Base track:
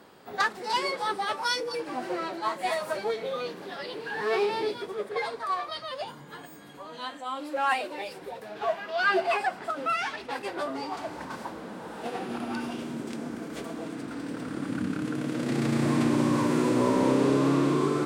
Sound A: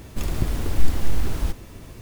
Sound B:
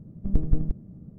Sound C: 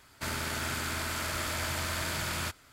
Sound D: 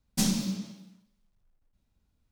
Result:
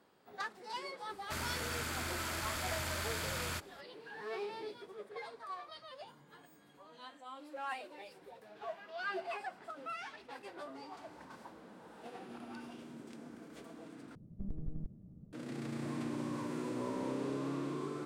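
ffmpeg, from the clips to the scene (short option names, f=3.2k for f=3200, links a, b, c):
-filter_complex "[0:a]volume=-15dB[a];[2:a]acompressor=threshold=-24dB:ratio=6:attack=3.2:release=140:knee=1:detection=peak[b];[a]asplit=2[c][d];[c]atrim=end=14.154[e];[b]atrim=end=1.18,asetpts=PTS-STARTPTS,volume=-10.5dB[f];[d]atrim=start=15.326[g];[3:a]atrim=end=2.72,asetpts=PTS-STARTPTS,volume=-5.5dB,afade=t=in:d=0.004:c=hsin,afade=t=out:st=2.716:d=0.004:c=hsin,adelay=1090[h];[e][f]acrossfade=d=0.004:c1=hsin:c2=hsin[i];[i][g]acrossfade=d=0.004:c1=hsin:c2=hsin[j];[j][h]amix=inputs=2:normalize=0"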